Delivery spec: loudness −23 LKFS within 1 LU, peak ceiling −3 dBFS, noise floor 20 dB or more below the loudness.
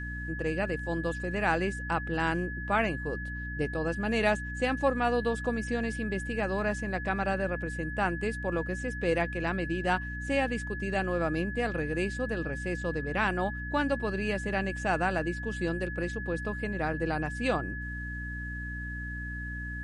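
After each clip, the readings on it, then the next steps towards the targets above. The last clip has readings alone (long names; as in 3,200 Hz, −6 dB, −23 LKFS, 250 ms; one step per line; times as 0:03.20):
mains hum 60 Hz; hum harmonics up to 300 Hz; level of the hum −36 dBFS; interfering tone 1,700 Hz; level of the tone −38 dBFS; integrated loudness −31.0 LKFS; sample peak −13.0 dBFS; target loudness −23.0 LKFS
→ mains-hum notches 60/120/180/240/300 Hz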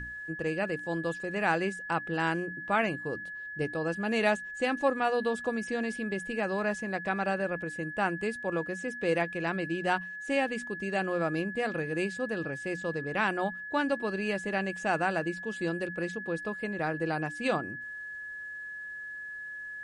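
mains hum none found; interfering tone 1,700 Hz; level of the tone −38 dBFS
→ notch filter 1,700 Hz, Q 30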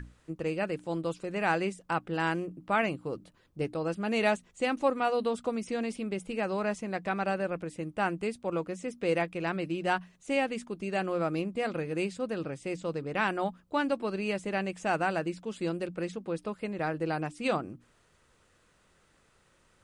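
interfering tone none found; integrated loudness −32.0 LKFS; sample peak −13.5 dBFS; target loudness −23.0 LKFS
→ level +9 dB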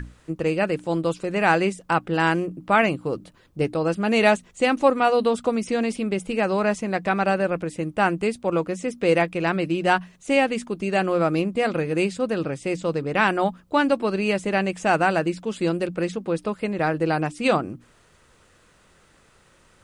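integrated loudness −23.0 LKFS; sample peak −4.5 dBFS; background noise floor −58 dBFS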